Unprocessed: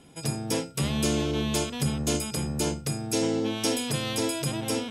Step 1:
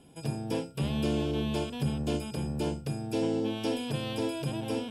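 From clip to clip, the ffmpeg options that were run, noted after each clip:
ffmpeg -i in.wav -filter_complex "[0:a]acrossover=split=4500[link_01][link_02];[link_02]acompressor=threshold=-45dB:ratio=4:attack=1:release=60[link_03];[link_01][link_03]amix=inputs=2:normalize=0,equalizer=frequency=1250:width_type=o:width=0.33:gain=-8,equalizer=frequency=2000:width_type=o:width=0.33:gain=-10,equalizer=frequency=4000:width_type=o:width=0.33:gain=-6,equalizer=frequency=6300:width_type=o:width=0.33:gain=-10,volume=-2.5dB" out.wav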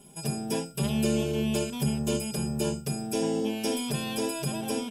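ffmpeg -i in.wav -af "aecho=1:1:5:0.87,aexciter=amount=3.7:drive=2.6:freq=5600" out.wav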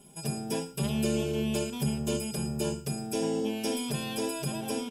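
ffmpeg -i in.wav -af "aecho=1:1:111:0.119,volume=-2dB" out.wav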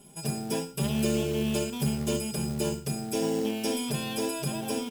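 ffmpeg -i in.wav -af "acrusher=bits=4:mode=log:mix=0:aa=0.000001,volume=1.5dB" out.wav

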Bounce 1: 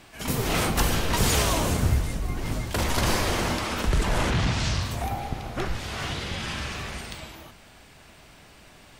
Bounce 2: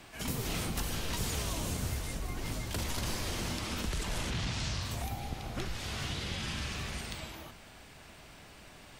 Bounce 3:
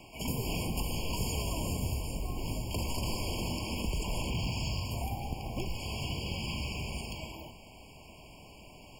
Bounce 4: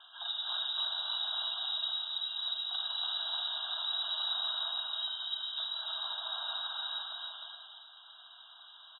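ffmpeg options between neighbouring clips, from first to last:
ffmpeg -i in.wav -filter_complex "[0:a]acrossover=split=300|2600[link_01][link_02][link_03];[link_01]acompressor=threshold=-33dB:ratio=4[link_04];[link_02]acompressor=threshold=-42dB:ratio=4[link_05];[link_03]acompressor=threshold=-37dB:ratio=4[link_06];[link_04][link_05][link_06]amix=inputs=3:normalize=0,volume=-2dB" out.wav
ffmpeg -i in.wav -af "acrusher=bits=5:mode=log:mix=0:aa=0.000001,afftfilt=real='re*eq(mod(floor(b*sr/1024/1100),2),0)':imag='im*eq(mod(floor(b*sr/1024/1100),2),0)':win_size=1024:overlap=0.75,volume=2dB" out.wav
ffmpeg -i in.wav -filter_complex "[0:a]asplit=2[link_01][link_02];[link_02]aecho=0:1:303:0.596[link_03];[link_01][link_03]amix=inputs=2:normalize=0,lowpass=frequency=3300:width_type=q:width=0.5098,lowpass=frequency=3300:width_type=q:width=0.6013,lowpass=frequency=3300:width_type=q:width=0.9,lowpass=frequency=3300:width_type=q:width=2.563,afreqshift=-3900,volume=-3.5dB" out.wav

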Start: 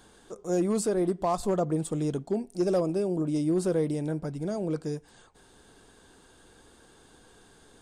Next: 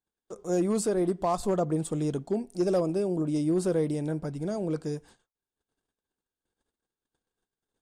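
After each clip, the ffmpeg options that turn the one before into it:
ffmpeg -i in.wav -af "agate=range=-39dB:threshold=-51dB:ratio=16:detection=peak" out.wav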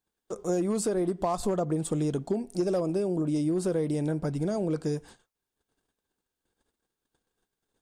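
ffmpeg -i in.wav -af "acompressor=threshold=-30dB:ratio=6,volume=5.5dB" out.wav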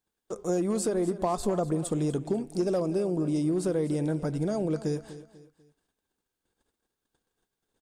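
ffmpeg -i in.wav -af "aecho=1:1:246|492|738:0.178|0.0658|0.0243" out.wav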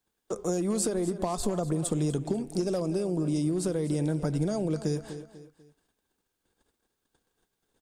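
ffmpeg -i in.wav -filter_complex "[0:a]acrossover=split=150|3000[link_01][link_02][link_03];[link_02]acompressor=threshold=-31dB:ratio=6[link_04];[link_01][link_04][link_03]amix=inputs=3:normalize=0,volume=4dB" out.wav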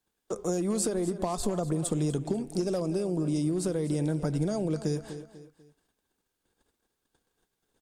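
ffmpeg -i in.wav -ar 48000 -c:a libmp3lame -b:a 128k out.mp3

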